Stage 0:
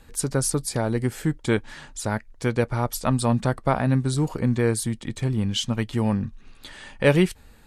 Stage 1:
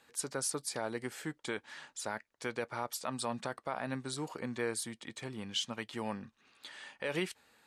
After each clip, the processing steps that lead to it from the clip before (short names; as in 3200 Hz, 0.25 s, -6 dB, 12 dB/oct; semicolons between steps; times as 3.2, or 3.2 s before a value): weighting filter A; limiter -15.5 dBFS, peak gain reduction 10.5 dB; gain -7.5 dB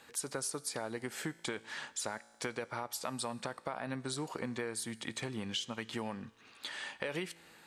compressor, threshold -42 dBFS, peak gain reduction 12 dB; resonator 56 Hz, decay 1.5 s, harmonics all, mix 40%; gain +11 dB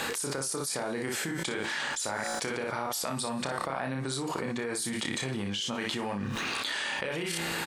on a send: early reflections 30 ms -5.5 dB, 59 ms -7.5 dB; on the sum: fast leveller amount 100%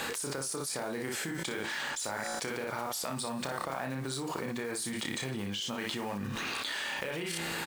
block floating point 5-bit; gain -3 dB